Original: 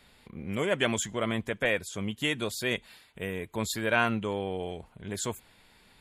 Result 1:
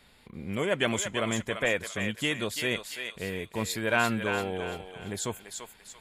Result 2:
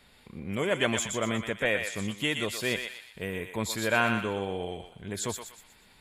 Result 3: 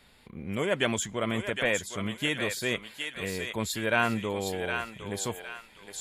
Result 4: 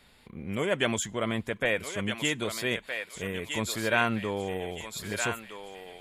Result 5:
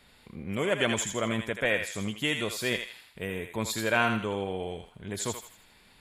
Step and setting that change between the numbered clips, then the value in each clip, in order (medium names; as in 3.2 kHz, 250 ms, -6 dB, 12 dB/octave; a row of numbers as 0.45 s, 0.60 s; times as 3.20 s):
thinning echo, time: 340 ms, 121 ms, 762 ms, 1266 ms, 81 ms